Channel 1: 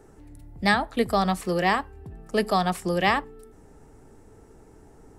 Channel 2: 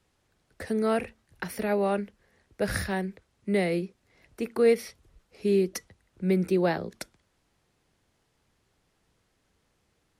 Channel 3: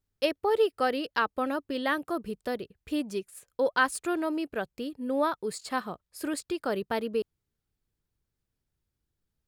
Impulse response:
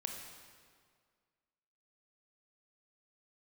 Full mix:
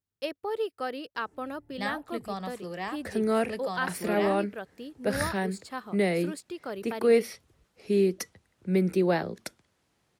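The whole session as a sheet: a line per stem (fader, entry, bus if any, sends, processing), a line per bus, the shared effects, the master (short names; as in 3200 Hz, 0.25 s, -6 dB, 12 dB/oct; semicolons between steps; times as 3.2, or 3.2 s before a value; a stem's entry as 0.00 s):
-6.0 dB, 1.15 s, no send, auto duck -7 dB, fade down 1.95 s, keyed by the third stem
0.0 dB, 2.45 s, no send, dry
-6.5 dB, 0.00 s, no send, dry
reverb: off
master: HPF 80 Hz 12 dB/oct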